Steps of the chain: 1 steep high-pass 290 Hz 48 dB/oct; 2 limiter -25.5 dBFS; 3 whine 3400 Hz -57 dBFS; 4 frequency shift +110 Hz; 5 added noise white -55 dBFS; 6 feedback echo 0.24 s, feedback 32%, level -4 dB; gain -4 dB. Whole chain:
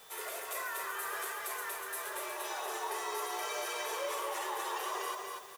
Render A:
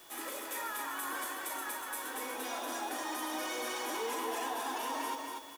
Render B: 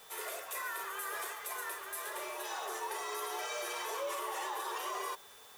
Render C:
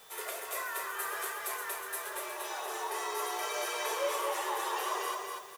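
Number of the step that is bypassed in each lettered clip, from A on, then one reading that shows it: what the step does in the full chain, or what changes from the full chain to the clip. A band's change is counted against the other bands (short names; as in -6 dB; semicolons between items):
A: 4, 250 Hz band +10.0 dB; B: 6, loudness change -1.5 LU; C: 2, mean gain reduction 1.5 dB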